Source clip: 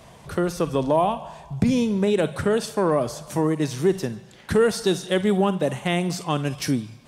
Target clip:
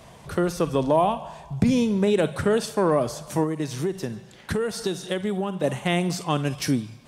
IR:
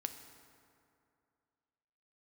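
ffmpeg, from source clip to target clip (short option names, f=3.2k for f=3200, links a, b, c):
-filter_complex "[0:a]asettb=1/sr,asplit=3[a][b][c];[a]atrim=end=3.434[d];[b]atrim=start=3.43:end=5.64,asetpts=PTS-STARTPTS,afade=t=in:d=0.004:c=qsin,afade=t=out:st=2.206:d=0.004:c=qsin,acompressor=threshold=-23dB:ratio=6[e];[c]atrim=start=5.636[f];[d][e]acrossfade=d=0.004:c1=hsin:c2=qsin[g];[g][f]acrossfade=d=0.004:c1=qsin:c2=hsin"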